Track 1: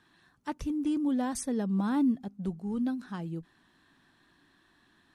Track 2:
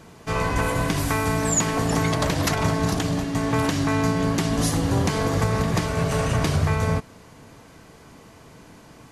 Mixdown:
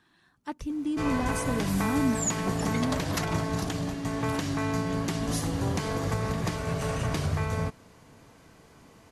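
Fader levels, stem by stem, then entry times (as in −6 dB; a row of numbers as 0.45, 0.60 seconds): −0.5, −7.0 decibels; 0.00, 0.70 seconds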